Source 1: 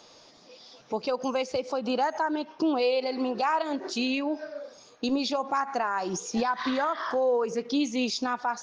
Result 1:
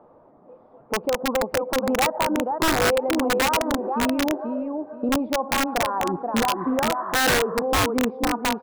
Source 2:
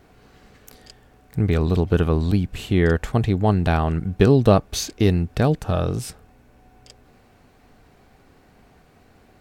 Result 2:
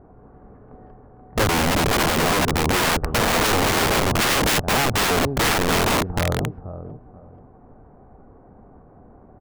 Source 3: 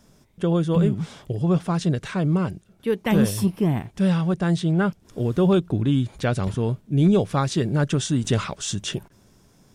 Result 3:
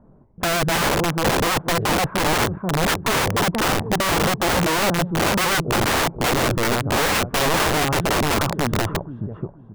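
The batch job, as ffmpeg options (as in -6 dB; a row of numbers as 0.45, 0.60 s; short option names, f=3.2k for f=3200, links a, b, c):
-af "lowpass=f=1.1k:w=0.5412,lowpass=f=1.1k:w=1.3066,aecho=1:1:482|964|1446:0.562|0.129|0.0297,aeval=exprs='(mod(9.44*val(0)+1,2)-1)/9.44':c=same,volume=5dB"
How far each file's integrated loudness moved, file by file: +5.5, +1.0, +3.0 LU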